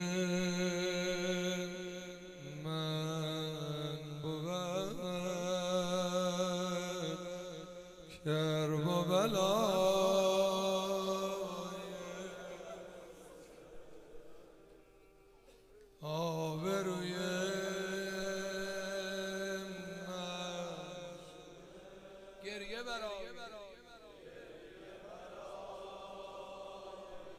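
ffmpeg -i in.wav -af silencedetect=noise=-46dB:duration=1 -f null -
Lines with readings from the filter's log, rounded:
silence_start: 14.39
silence_end: 16.02 | silence_duration: 1.63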